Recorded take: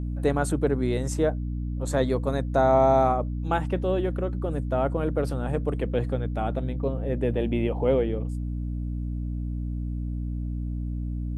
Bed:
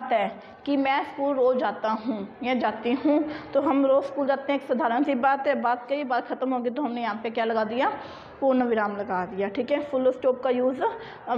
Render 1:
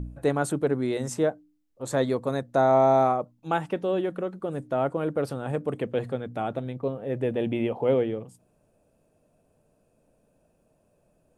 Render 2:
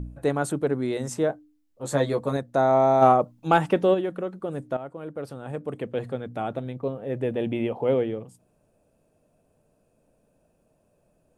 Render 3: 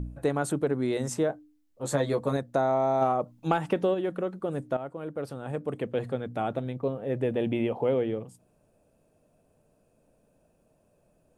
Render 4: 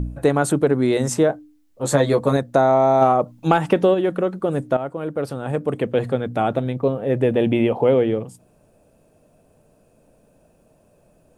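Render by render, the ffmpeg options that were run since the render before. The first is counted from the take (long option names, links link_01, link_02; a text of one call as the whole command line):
ffmpeg -i in.wav -af "bandreject=frequency=60:width_type=h:width=4,bandreject=frequency=120:width_type=h:width=4,bandreject=frequency=180:width_type=h:width=4,bandreject=frequency=240:width_type=h:width=4,bandreject=frequency=300:width_type=h:width=4" out.wav
ffmpeg -i in.wav -filter_complex "[0:a]asettb=1/sr,asplit=3[link_01][link_02][link_03];[link_01]atrim=end=1.284[link_04];[link_02]atrim=start=1.28:end=2.37,asetpts=PTS-STARTPTS,afade=type=in:duration=0.004:curve=qsin,afade=type=out:start_time=1.086:duration=0.004:curve=qsin,asplit=2[link_05][link_06];[link_06]adelay=14,volume=-3dB[link_07];[link_05][link_07]amix=inputs=2:normalize=0,atrim=end_sample=48069[link_08];[link_03]atrim=start=2.366[link_09];[link_04][link_08]acrossfade=duration=0.004:curve1=hsin:curve2=qsin[link_10];[link_10][link_09]acrossfade=duration=0.004:curve1=qsin:curve2=hsin,asplit=3[link_11][link_12][link_13];[link_11]afade=type=out:start_time=3.01:duration=0.02[link_14];[link_12]acontrast=89,afade=type=in:start_time=3.01:duration=0.02,afade=type=out:start_time=3.93:duration=0.02[link_15];[link_13]afade=type=in:start_time=3.93:duration=0.02[link_16];[link_14][link_15][link_16]amix=inputs=3:normalize=0,asplit=2[link_17][link_18];[link_17]atrim=end=4.77,asetpts=PTS-STARTPTS,afade=type=out:start_time=4.766:duration=0.004:curve=hsin:silence=0.223872[link_19];[link_18]atrim=start=4.77,asetpts=PTS-STARTPTS,afade=type=in:duration=1.51:silence=0.223872[link_20];[link_19][link_20]concat=n=2:v=0:a=1" out.wav
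ffmpeg -i in.wav -af "acompressor=threshold=-21dB:ratio=10" out.wav
ffmpeg -i in.wav -af "volume=9.5dB,alimiter=limit=-2dB:level=0:latency=1" out.wav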